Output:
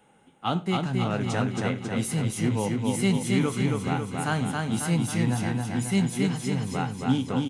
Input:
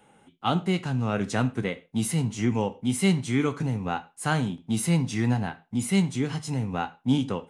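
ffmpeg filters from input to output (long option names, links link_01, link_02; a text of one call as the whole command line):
ffmpeg -i in.wav -filter_complex "[0:a]asplit=2[link_01][link_02];[link_02]aecho=0:1:272|544|816|1088|1360|1632|1904|2176:0.708|0.411|0.238|0.138|0.0801|0.0465|0.027|0.0156[link_03];[link_01][link_03]amix=inputs=2:normalize=0,volume=-2dB" out.wav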